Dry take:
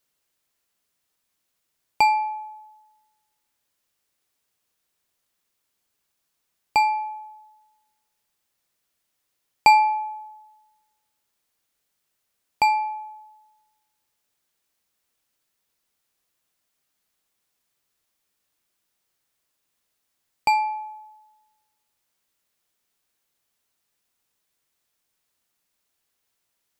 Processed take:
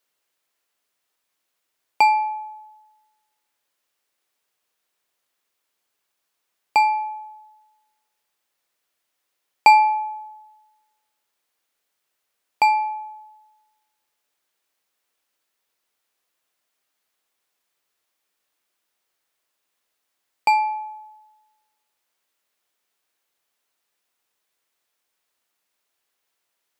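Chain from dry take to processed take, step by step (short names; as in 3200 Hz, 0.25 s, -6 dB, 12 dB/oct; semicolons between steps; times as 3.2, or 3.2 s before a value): tone controls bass -12 dB, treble -4 dB; gain +2.5 dB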